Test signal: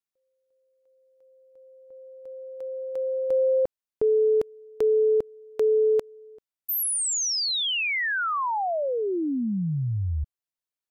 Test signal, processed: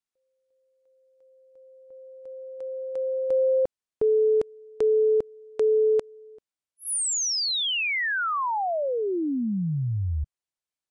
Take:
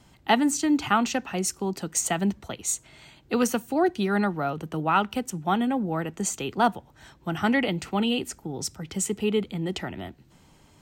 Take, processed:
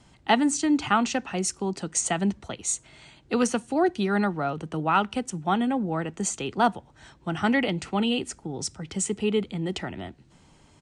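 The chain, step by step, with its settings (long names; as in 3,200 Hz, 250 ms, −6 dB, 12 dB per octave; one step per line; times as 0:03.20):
downsampling to 22,050 Hz
AAC 128 kbit/s 44,100 Hz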